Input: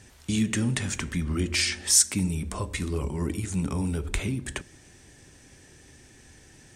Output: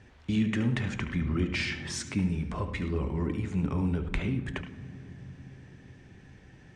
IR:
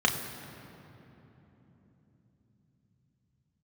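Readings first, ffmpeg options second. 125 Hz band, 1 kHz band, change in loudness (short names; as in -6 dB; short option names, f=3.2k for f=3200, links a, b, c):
-1.0 dB, -1.0 dB, -4.5 dB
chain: -filter_complex "[0:a]lowpass=2.7k,asplit=2[a][b];[1:a]atrim=start_sample=2205,adelay=72[c];[b][c]afir=irnorm=-1:irlink=0,volume=-22dB[d];[a][d]amix=inputs=2:normalize=0,volume=-1.5dB"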